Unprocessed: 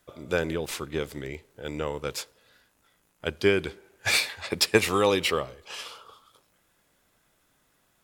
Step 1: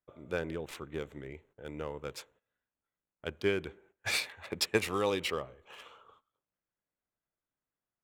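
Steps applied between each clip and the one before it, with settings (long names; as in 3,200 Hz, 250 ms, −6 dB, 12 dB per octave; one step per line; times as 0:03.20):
adaptive Wiener filter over 9 samples
noise gate −55 dBFS, range −17 dB
level −8 dB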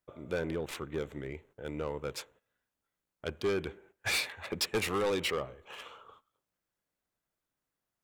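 soft clipping −29.5 dBFS, distortion −8 dB
level +4.5 dB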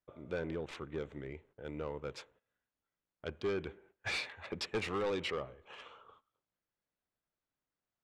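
high-frequency loss of the air 98 metres
level −4 dB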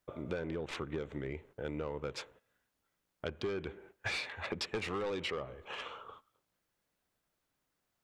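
downward compressor 6 to 1, threshold −44 dBFS, peak gain reduction 12 dB
level +9 dB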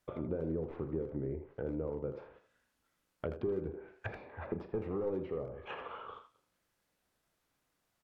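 double-tracking delay 37 ms −11 dB
treble cut that deepens with the level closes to 560 Hz, closed at −37 dBFS
far-end echo of a speakerphone 80 ms, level −8 dB
level +2.5 dB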